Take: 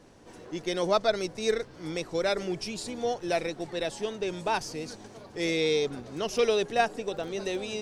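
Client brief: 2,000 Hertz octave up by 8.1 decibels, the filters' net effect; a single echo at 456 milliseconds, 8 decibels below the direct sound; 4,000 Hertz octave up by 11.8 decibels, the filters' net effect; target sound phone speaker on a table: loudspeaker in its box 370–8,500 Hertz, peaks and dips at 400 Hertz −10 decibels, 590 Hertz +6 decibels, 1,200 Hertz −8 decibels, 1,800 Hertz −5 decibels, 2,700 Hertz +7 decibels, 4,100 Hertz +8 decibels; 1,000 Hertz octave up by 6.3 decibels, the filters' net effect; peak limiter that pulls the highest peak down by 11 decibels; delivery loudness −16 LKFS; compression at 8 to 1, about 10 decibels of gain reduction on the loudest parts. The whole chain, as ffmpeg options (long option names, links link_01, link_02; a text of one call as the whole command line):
ffmpeg -i in.wav -af "equalizer=frequency=1000:width_type=o:gain=9,equalizer=frequency=2000:width_type=o:gain=4.5,equalizer=frequency=4000:width_type=o:gain=6,acompressor=threshold=-24dB:ratio=8,alimiter=limit=-23.5dB:level=0:latency=1,highpass=frequency=370:width=0.5412,highpass=frequency=370:width=1.3066,equalizer=frequency=400:width_type=q:width=4:gain=-10,equalizer=frequency=590:width_type=q:width=4:gain=6,equalizer=frequency=1200:width_type=q:width=4:gain=-8,equalizer=frequency=1800:width_type=q:width=4:gain=-5,equalizer=frequency=2700:width_type=q:width=4:gain=7,equalizer=frequency=4100:width_type=q:width=4:gain=8,lowpass=frequency=8500:width=0.5412,lowpass=frequency=8500:width=1.3066,aecho=1:1:456:0.398,volume=16dB" out.wav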